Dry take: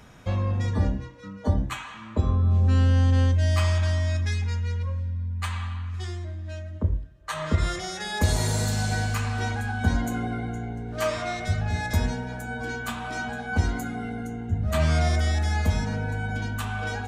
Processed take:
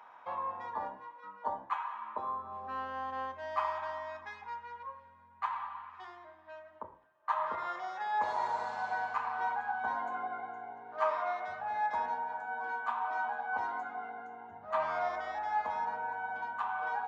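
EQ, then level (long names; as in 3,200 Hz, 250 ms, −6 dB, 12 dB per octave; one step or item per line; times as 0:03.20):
head-to-tape spacing loss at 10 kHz 42 dB
dynamic equaliser 2,800 Hz, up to −4 dB, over −53 dBFS, Q 0.83
high-pass with resonance 940 Hz, resonance Q 4.9
−1.5 dB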